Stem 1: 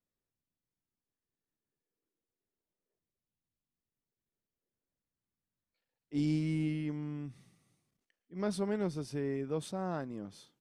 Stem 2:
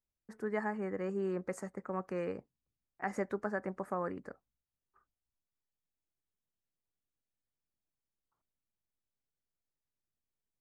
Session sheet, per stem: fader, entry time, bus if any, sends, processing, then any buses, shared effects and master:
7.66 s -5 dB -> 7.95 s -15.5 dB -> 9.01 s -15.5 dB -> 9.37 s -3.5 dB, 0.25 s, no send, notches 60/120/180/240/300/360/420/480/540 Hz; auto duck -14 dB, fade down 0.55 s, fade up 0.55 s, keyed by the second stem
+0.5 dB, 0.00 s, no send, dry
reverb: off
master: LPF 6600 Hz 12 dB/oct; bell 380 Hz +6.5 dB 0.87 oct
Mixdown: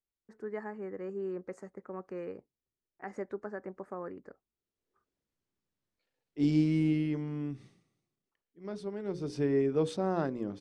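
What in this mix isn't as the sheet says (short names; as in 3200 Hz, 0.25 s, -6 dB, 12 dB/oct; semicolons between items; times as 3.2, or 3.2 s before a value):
stem 1 -5.0 dB -> +2.5 dB; stem 2 +0.5 dB -> -7.0 dB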